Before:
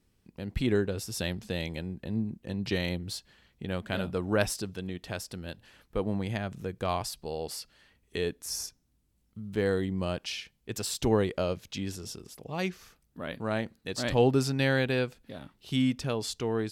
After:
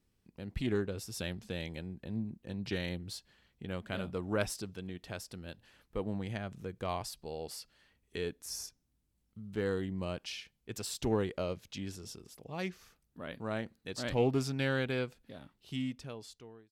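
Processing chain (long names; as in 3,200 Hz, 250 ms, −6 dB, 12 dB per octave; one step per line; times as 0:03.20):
fade-out on the ending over 1.42 s
highs frequency-modulated by the lows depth 0.14 ms
level −6 dB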